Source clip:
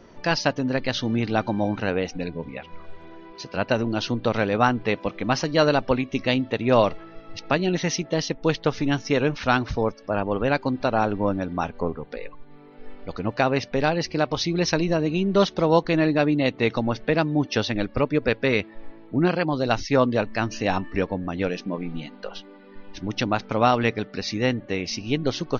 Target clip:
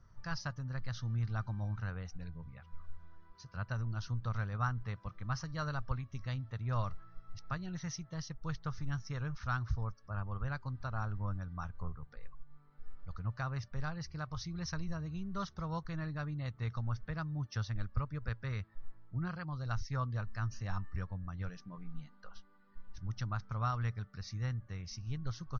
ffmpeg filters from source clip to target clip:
ffmpeg -i in.wav -af "firequalizer=gain_entry='entry(110,0);entry(260,-26);entry(390,-27);entry(840,-20);entry(1200,-8);entry(2500,-25);entry(5700,-12);entry(9100,-19)':delay=0.05:min_phase=1,volume=-3dB" out.wav

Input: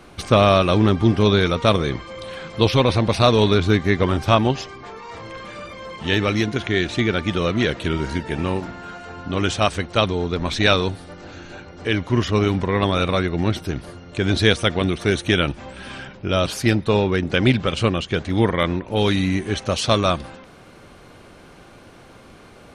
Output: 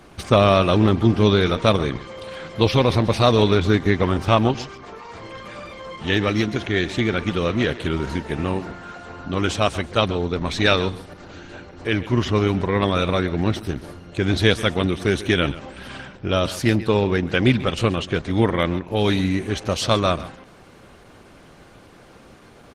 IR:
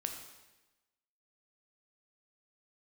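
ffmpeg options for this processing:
-af "aecho=1:1:135:0.158" -ar 48000 -c:a libopus -b:a 16k

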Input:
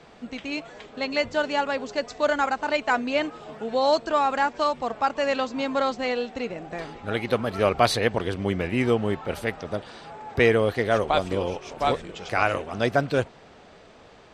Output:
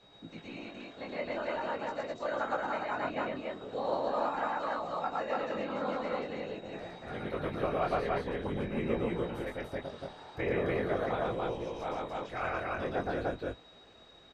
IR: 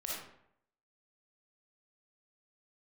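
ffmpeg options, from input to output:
-filter_complex "[0:a]acrossover=split=230|2300[link_01][link_02][link_03];[link_03]acompressor=threshold=-46dB:ratio=10[link_04];[link_01][link_02][link_04]amix=inputs=3:normalize=0,afftfilt=real='hypot(re,im)*cos(2*PI*random(0))':imag='hypot(re,im)*sin(2*PI*random(1))':win_size=512:overlap=0.75,aeval=exprs='val(0)+0.00178*sin(2*PI*3800*n/s)':channel_layout=same,flanger=delay=17:depth=7.4:speed=0.44,aecho=1:1:113.7|291.5:0.891|0.891,volume=-4dB"

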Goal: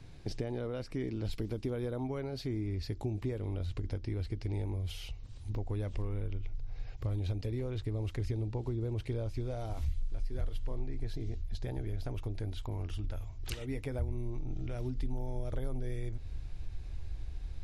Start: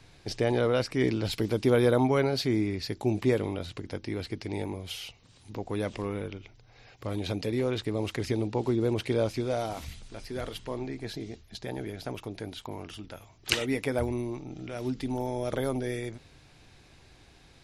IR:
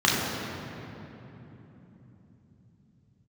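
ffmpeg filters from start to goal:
-af "asubboost=boost=11:cutoff=56,acompressor=threshold=-37dB:ratio=4,lowshelf=frequency=390:gain=12,volume=-5.5dB"

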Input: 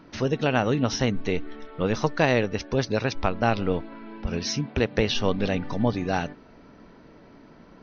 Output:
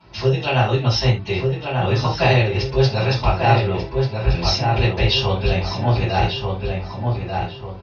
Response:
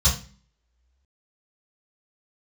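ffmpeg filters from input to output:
-filter_complex "[0:a]highpass=frequency=190:poles=1,asplit=2[link_01][link_02];[link_02]adelay=1190,lowpass=frequency=2200:poles=1,volume=-3.5dB,asplit=2[link_03][link_04];[link_04]adelay=1190,lowpass=frequency=2200:poles=1,volume=0.39,asplit=2[link_05][link_06];[link_06]adelay=1190,lowpass=frequency=2200:poles=1,volume=0.39,asplit=2[link_07][link_08];[link_08]adelay=1190,lowpass=frequency=2200:poles=1,volume=0.39,asplit=2[link_09][link_10];[link_10]adelay=1190,lowpass=frequency=2200:poles=1,volume=0.39[link_11];[link_01][link_03][link_05][link_07][link_09][link_11]amix=inputs=6:normalize=0[link_12];[1:a]atrim=start_sample=2205,atrim=end_sample=3087,asetrate=32193,aresample=44100[link_13];[link_12][link_13]afir=irnorm=-1:irlink=0,volume=-11.5dB"

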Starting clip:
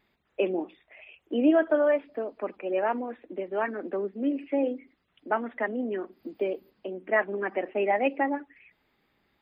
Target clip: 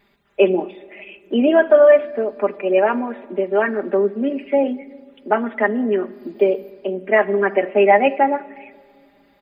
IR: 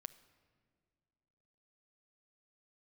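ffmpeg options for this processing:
-filter_complex "[0:a]aecho=1:1:5:0.72,asplit=2[link_01][link_02];[1:a]atrim=start_sample=2205,asetrate=41895,aresample=44100[link_03];[link_02][link_03]afir=irnorm=-1:irlink=0,volume=12.5dB[link_04];[link_01][link_04]amix=inputs=2:normalize=0,volume=-2dB"

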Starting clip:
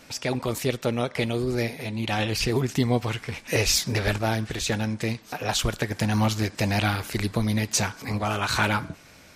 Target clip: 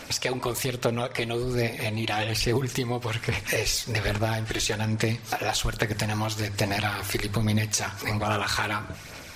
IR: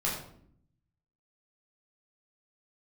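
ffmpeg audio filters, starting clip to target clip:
-filter_complex "[0:a]equalizer=frequency=210:width_type=o:width=1.8:gain=-5,bandreject=frequency=50:width_type=h:width=6,bandreject=frequency=100:width_type=h:width=6,bandreject=frequency=150:width_type=h:width=6,bandreject=frequency=200:width_type=h:width=6,acompressor=threshold=-33dB:ratio=6,aphaser=in_gain=1:out_gain=1:delay=3:decay=0.38:speed=1.2:type=sinusoidal,asplit=2[link_01][link_02];[1:a]atrim=start_sample=2205,adelay=9[link_03];[link_02][link_03]afir=irnorm=-1:irlink=0,volume=-24.5dB[link_04];[link_01][link_04]amix=inputs=2:normalize=0,volume=8dB"

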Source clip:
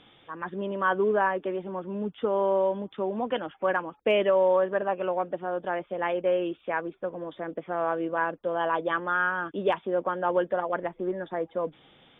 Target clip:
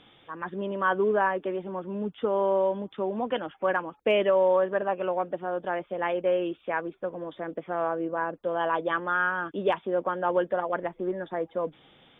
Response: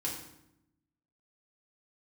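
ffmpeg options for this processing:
-filter_complex "[0:a]asplit=3[link_01][link_02][link_03];[link_01]afade=type=out:start_time=7.87:duration=0.02[link_04];[link_02]lowpass=frequency=1200:poles=1,afade=type=in:start_time=7.87:duration=0.02,afade=type=out:start_time=8.33:duration=0.02[link_05];[link_03]afade=type=in:start_time=8.33:duration=0.02[link_06];[link_04][link_05][link_06]amix=inputs=3:normalize=0"

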